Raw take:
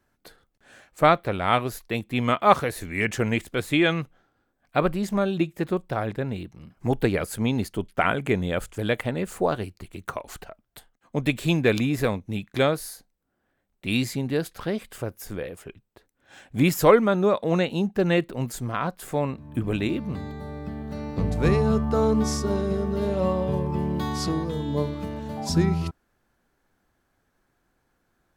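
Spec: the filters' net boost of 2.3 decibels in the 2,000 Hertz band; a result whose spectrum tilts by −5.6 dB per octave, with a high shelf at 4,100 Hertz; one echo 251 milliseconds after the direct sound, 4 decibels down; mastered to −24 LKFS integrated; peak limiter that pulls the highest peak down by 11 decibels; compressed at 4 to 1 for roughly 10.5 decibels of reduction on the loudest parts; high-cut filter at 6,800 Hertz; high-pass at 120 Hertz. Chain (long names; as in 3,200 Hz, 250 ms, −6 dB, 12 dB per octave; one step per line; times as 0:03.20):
high-pass filter 120 Hz
low-pass filter 6,800 Hz
parametric band 2,000 Hz +4 dB
high-shelf EQ 4,100 Hz −4.5 dB
downward compressor 4 to 1, threshold −23 dBFS
brickwall limiter −19.5 dBFS
single-tap delay 251 ms −4 dB
level +6.5 dB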